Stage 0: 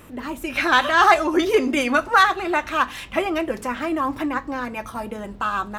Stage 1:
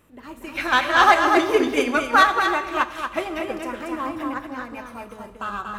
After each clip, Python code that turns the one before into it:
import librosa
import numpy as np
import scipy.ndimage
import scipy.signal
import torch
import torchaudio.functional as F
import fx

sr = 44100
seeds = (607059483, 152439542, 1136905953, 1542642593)

y = x + 10.0 ** (-3.5 / 20.0) * np.pad(x, (int(235 * sr / 1000.0), 0))[:len(x)]
y = fx.rev_schroeder(y, sr, rt60_s=1.7, comb_ms=27, drr_db=8.5)
y = fx.upward_expand(y, sr, threshold_db=-37.0, expansion=1.5)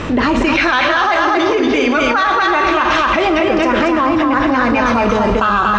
y = scipy.signal.sosfilt(scipy.signal.butter(6, 6100.0, 'lowpass', fs=sr, output='sos'), x)
y = fx.env_flatten(y, sr, amount_pct=100)
y = y * 10.0 ** (-3.0 / 20.0)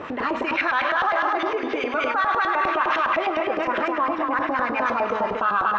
y = fx.filter_lfo_bandpass(x, sr, shape='saw_up', hz=9.8, low_hz=530.0, high_hz=2100.0, q=1.0)
y = y * 10.0 ** (-5.5 / 20.0)